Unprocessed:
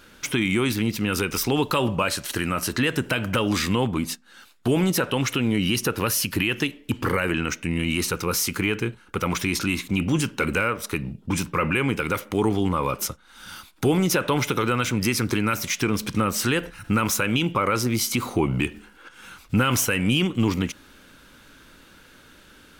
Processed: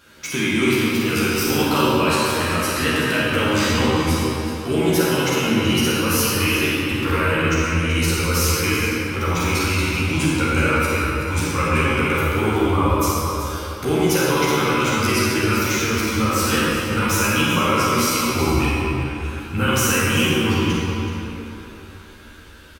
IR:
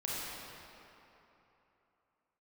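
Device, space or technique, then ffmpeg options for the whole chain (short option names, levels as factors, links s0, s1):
cave: -filter_complex "[0:a]highpass=44,bandreject=f=60.89:t=h:w=4,bandreject=f=121.78:t=h:w=4,bandreject=f=182.67:t=h:w=4,bandreject=f=243.56:t=h:w=4,bandreject=f=304.45:t=h:w=4,bandreject=f=365.34:t=h:w=4,bandreject=f=426.23:t=h:w=4,bandreject=f=487.12:t=h:w=4,bandreject=f=548.01:t=h:w=4,bandreject=f=608.9:t=h:w=4,bandreject=f=669.79:t=h:w=4,bandreject=f=730.68:t=h:w=4,bandreject=f=791.57:t=h:w=4,bandreject=f=852.46:t=h:w=4,bandreject=f=913.35:t=h:w=4,bandreject=f=974.24:t=h:w=4,bandreject=f=1035.13:t=h:w=4,bandreject=f=1096.02:t=h:w=4,bandreject=f=1156.91:t=h:w=4,bandreject=f=1217.8:t=h:w=4,bandreject=f=1278.69:t=h:w=4,bandreject=f=1339.58:t=h:w=4,bandreject=f=1400.47:t=h:w=4,bandreject=f=1461.36:t=h:w=4,bandreject=f=1522.25:t=h:w=4,bandreject=f=1583.14:t=h:w=4,bandreject=f=1644.03:t=h:w=4,bandreject=f=1704.92:t=h:w=4,bandreject=f=1765.81:t=h:w=4,bandreject=f=1826.7:t=h:w=4,bandreject=f=1887.59:t=h:w=4,bandreject=f=1948.48:t=h:w=4,bandreject=f=2009.37:t=h:w=4,bandreject=f=2070.26:t=h:w=4,asubboost=boost=9:cutoff=51,aecho=1:1:378:0.266[s0];[1:a]atrim=start_sample=2205[s1];[s0][s1]afir=irnorm=-1:irlink=0,asplit=2[s2][s3];[s3]adelay=13,volume=0.708[s4];[s2][s4]amix=inputs=2:normalize=0"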